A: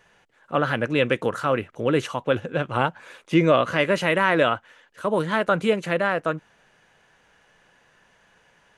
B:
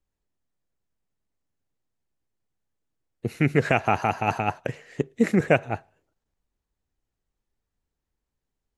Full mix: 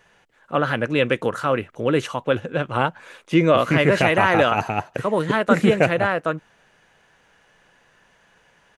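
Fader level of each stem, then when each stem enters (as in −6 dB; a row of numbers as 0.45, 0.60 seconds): +1.5, +1.5 decibels; 0.00, 0.30 seconds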